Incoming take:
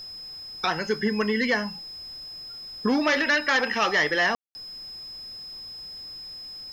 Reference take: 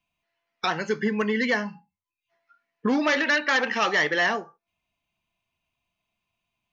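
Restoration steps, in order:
notch filter 5,100 Hz, Q 30
ambience match 0:04.35–0:04.55
downward expander −32 dBFS, range −21 dB

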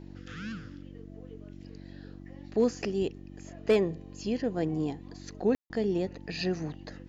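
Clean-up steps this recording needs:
clipped peaks rebuilt −16.5 dBFS
hum removal 47.3 Hz, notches 7
ambience match 0:05.55–0:05.70

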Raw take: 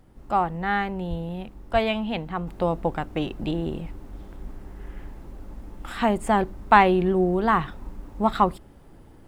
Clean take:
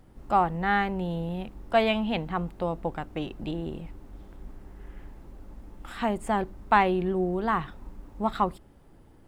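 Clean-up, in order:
0:01.09–0:01.21: high-pass filter 140 Hz 24 dB per octave
0:01.72–0:01.84: high-pass filter 140 Hz 24 dB per octave
level 0 dB, from 0:02.47 −5.5 dB

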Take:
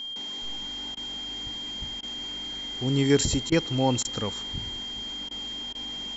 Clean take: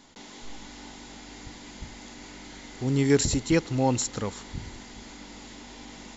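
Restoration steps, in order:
notch filter 3,200 Hz, Q 30
repair the gap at 0:00.95/0:02.01/0:03.50/0:04.03/0:05.29/0:05.73, 18 ms

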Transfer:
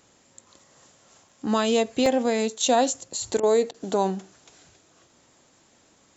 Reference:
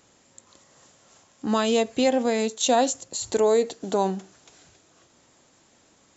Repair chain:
repair the gap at 0:00.59/0:01.29/0:02.06, 3.2 ms
repair the gap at 0:03.40/0:03.71, 31 ms

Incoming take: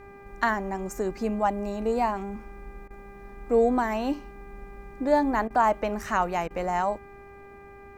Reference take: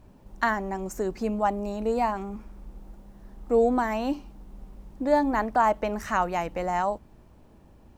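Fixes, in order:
hum removal 399.3 Hz, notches 6
repair the gap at 0:02.88/0:05.48/0:06.48, 23 ms

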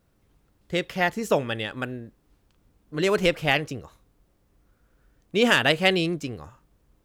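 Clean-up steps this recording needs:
clipped peaks rebuilt −8 dBFS

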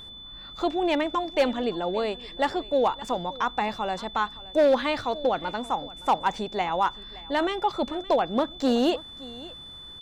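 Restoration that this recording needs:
clipped peaks rebuilt −14.5 dBFS
notch filter 3,500 Hz, Q 30
echo removal 569 ms −20 dB

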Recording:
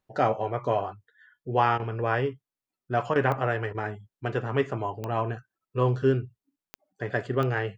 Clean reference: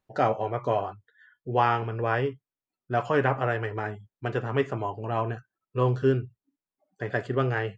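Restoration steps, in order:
click removal
repair the gap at 0:01.78/0:03.14/0:03.73/0:06.93, 15 ms

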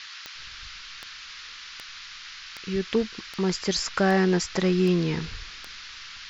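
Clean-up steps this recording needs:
click removal
noise reduction from a noise print 28 dB

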